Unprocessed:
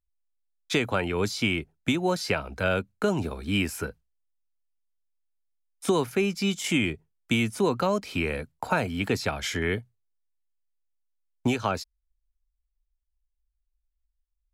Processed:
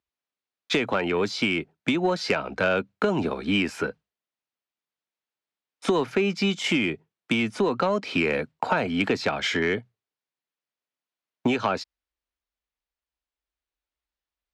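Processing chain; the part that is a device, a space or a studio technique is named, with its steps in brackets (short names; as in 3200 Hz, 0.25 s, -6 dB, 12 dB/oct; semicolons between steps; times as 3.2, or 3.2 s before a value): AM radio (BPF 190–4000 Hz; compressor, threshold -26 dBFS, peak gain reduction 7.5 dB; soft clip -19.5 dBFS, distortion -22 dB; tremolo 0.35 Hz, depth 16%); gain +8.5 dB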